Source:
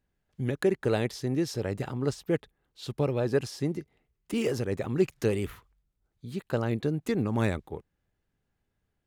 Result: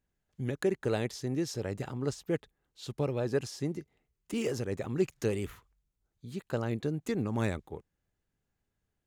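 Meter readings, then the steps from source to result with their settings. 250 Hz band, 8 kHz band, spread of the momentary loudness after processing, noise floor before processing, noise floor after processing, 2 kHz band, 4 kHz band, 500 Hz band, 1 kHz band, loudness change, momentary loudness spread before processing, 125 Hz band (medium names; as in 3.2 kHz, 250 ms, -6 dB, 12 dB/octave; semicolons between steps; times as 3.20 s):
-4.0 dB, -0.5 dB, 12 LU, -80 dBFS, -84 dBFS, -4.0 dB, -3.0 dB, -4.0 dB, -4.0 dB, -4.0 dB, 12 LU, -4.0 dB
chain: peaking EQ 6.8 kHz +5 dB 0.5 oct; trim -4 dB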